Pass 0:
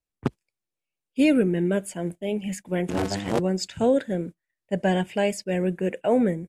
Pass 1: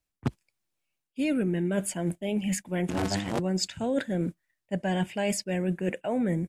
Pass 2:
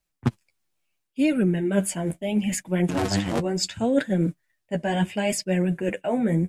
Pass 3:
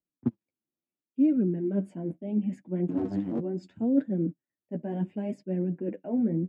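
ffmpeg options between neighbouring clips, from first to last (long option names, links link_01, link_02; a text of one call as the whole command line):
ffmpeg -i in.wav -af "equalizer=frequency=450:width_type=o:width=0.61:gain=-5.5,areverse,acompressor=threshold=-31dB:ratio=6,areverse,volume=6dB" out.wav
ffmpeg -i in.wav -af "flanger=delay=4.8:depth=9:regen=19:speed=0.72:shape=triangular,volume=7.5dB" out.wav
ffmpeg -i in.wav -af "bandpass=frequency=270:width_type=q:width=2.2:csg=0" out.wav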